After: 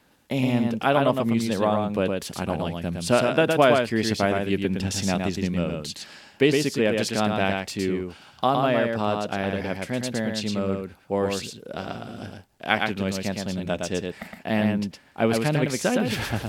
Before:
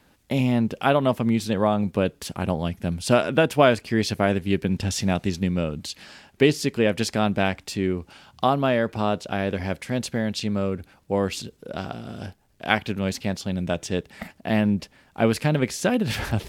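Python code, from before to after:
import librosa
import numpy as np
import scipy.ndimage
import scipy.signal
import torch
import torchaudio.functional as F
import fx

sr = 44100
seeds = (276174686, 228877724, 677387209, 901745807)

p1 = fx.low_shelf(x, sr, hz=98.0, db=-8.5)
p2 = p1 + fx.echo_single(p1, sr, ms=113, db=-4.0, dry=0)
y = F.gain(torch.from_numpy(p2), -1.0).numpy()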